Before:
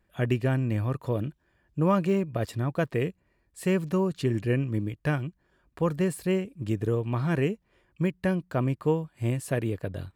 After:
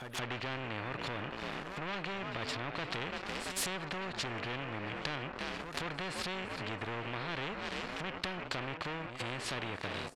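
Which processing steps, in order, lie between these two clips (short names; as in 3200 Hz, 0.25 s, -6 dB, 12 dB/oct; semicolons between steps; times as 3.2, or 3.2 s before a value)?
ending faded out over 0.54 s; bell 4300 Hz +5.5 dB 0.45 oct; on a send: frequency-shifting echo 0.337 s, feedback 54%, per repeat +52 Hz, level -19 dB; on the sum: sample leveller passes 3; compressor 8:1, threshold -23 dBFS, peak gain reduction 8 dB; pre-echo 0.171 s -22.5 dB; harmonic-percussive split percussive -8 dB; treble ducked by the level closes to 2100 Hz, closed at -25 dBFS; spectral compressor 4:1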